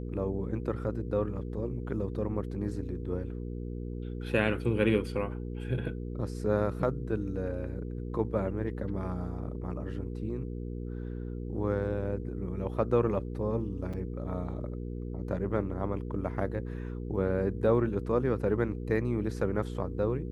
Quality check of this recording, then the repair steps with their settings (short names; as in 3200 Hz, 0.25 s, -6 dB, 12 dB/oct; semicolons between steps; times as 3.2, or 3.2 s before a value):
hum 60 Hz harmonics 8 -37 dBFS
13.93–13.94 gap 5.1 ms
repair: de-hum 60 Hz, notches 8; interpolate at 13.93, 5.1 ms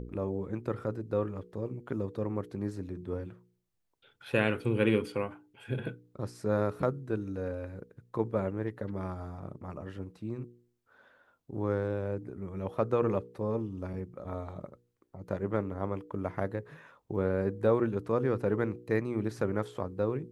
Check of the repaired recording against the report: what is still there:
none